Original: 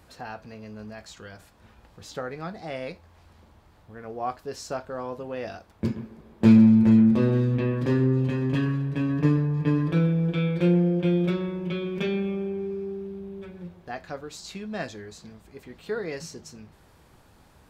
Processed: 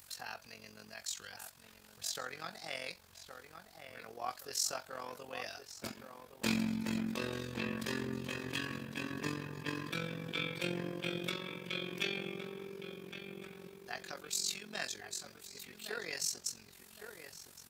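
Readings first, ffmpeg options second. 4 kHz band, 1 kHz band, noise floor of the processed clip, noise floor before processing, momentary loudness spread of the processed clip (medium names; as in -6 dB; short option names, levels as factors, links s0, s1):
+3.5 dB, -8.5 dB, -59 dBFS, -56 dBFS, 16 LU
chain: -filter_complex "[0:a]lowshelf=f=97:g=8,acrossover=split=170[s0][s1];[s0]acompressor=mode=upward:threshold=0.0282:ratio=2.5[s2];[s2][s1]amix=inputs=2:normalize=0,aderivative,asplit=2[s3][s4];[s4]adelay=1117,lowpass=f=2200:p=1,volume=0.398,asplit=2[s5][s6];[s6]adelay=1117,lowpass=f=2200:p=1,volume=0.42,asplit=2[s7][s8];[s8]adelay=1117,lowpass=f=2200:p=1,volume=0.42,asplit=2[s9][s10];[s10]adelay=1117,lowpass=f=2200:p=1,volume=0.42,asplit=2[s11][s12];[s12]adelay=1117,lowpass=f=2200:p=1,volume=0.42[s13];[s3][s5][s7][s9][s11][s13]amix=inputs=6:normalize=0,tremolo=f=45:d=0.788,volume=3.98"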